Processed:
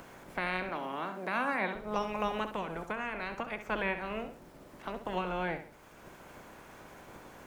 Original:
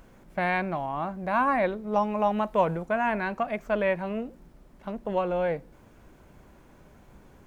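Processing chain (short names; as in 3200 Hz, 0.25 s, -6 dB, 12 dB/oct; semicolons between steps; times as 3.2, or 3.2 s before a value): spectral limiter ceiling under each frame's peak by 17 dB; 0.69–1.75 steep high-pass 170 Hz 48 dB/oct; 2.53–3.61 compressor, threshold -27 dBFS, peak gain reduction 9 dB; on a send: flutter echo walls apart 11.3 m, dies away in 0.38 s; on the sum: three-band squash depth 40%; gain -7 dB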